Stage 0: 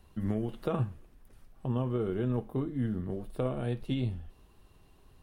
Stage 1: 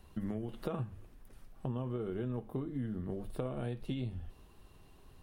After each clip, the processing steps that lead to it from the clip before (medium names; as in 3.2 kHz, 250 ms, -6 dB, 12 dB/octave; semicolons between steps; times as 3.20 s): hum notches 50/100 Hz; compression 5:1, threshold -36 dBFS, peak gain reduction 9.5 dB; trim +1.5 dB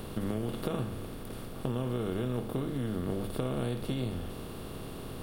spectral levelling over time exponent 0.4; treble shelf 4.2 kHz +9 dB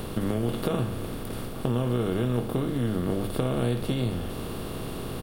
reverse; upward compressor, threshold -35 dBFS; reverse; doubling 17 ms -13.5 dB; trim +6 dB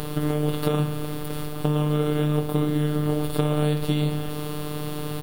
robot voice 150 Hz; trim +6 dB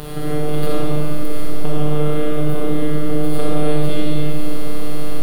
reverberation RT60 2.4 s, pre-delay 5 ms, DRR -5.5 dB; trim -1.5 dB